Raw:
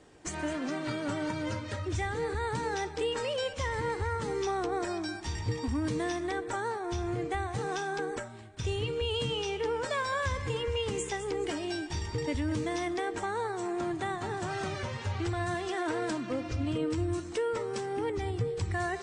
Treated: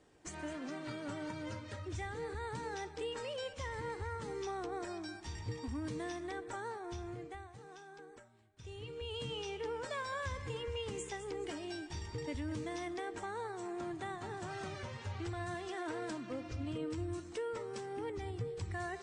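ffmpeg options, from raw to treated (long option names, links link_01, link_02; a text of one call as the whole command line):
ffmpeg -i in.wav -af "volume=2.5dB,afade=type=out:start_time=6.84:duration=0.72:silence=0.281838,afade=type=in:start_time=8.55:duration=0.82:silence=0.266073" out.wav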